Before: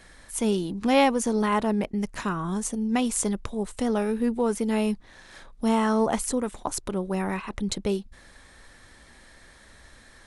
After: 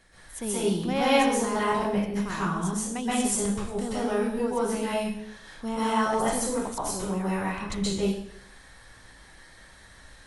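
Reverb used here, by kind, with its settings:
dense smooth reverb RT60 0.66 s, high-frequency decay 1×, pre-delay 115 ms, DRR −9.5 dB
level −9 dB

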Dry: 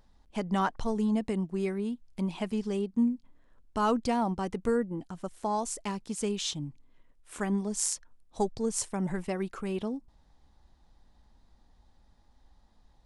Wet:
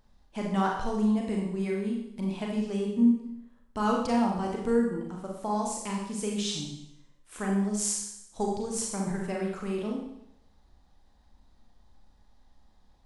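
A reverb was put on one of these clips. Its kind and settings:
four-comb reverb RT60 0.78 s, combs from 30 ms, DRR −1 dB
level −2.5 dB

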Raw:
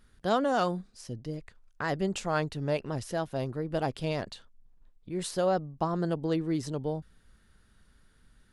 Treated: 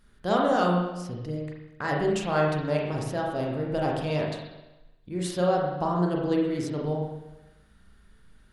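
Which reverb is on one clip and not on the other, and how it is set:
spring reverb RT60 1 s, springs 34/39 ms, chirp 30 ms, DRR −2 dB

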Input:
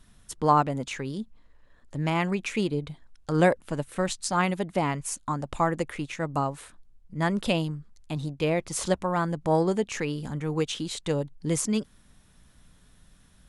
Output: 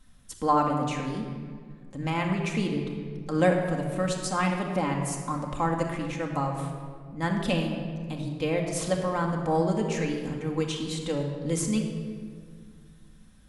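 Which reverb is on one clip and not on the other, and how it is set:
rectangular room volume 3,100 cubic metres, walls mixed, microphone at 2.1 metres
level −4 dB

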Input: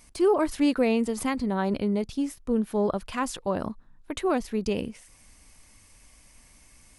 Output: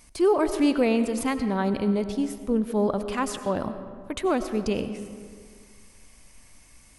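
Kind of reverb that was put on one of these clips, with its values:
comb and all-pass reverb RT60 2 s, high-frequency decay 0.5×, pre-delay 55 ms, DRR 10 dB
level +1 dB

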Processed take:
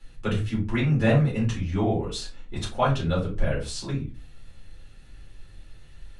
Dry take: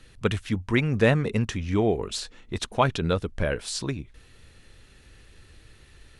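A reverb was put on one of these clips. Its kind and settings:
rectangular room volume 120 cubic metres, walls furnished, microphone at 4.1 metres
level −11.5 dB

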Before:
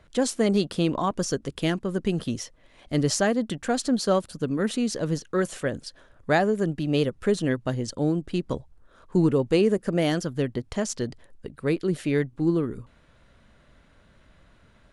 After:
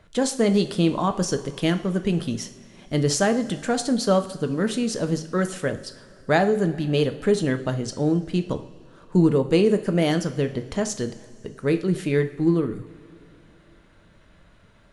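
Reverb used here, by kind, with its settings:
coupled-rooms reverb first 0.47 s, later 3 s, from −17 dB, DRR 7.5 dB
level +1.5 dB

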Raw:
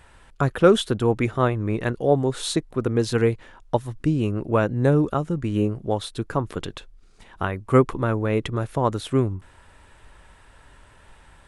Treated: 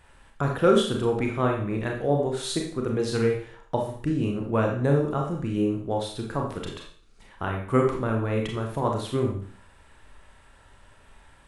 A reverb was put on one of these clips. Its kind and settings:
four-comb reverb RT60 0.5 s, combs from 28 ms, DRR 0.5 dB
level −5.5 dB

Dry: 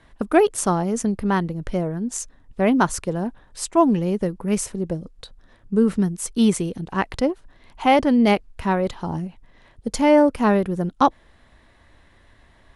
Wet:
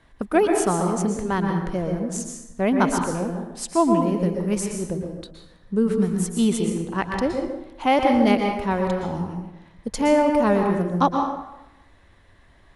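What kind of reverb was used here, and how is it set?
dense smooth reverb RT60 0.94 s, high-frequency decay 0.65×, pre-delay 105 ms, DRR 2.5 dB
level −3 dB

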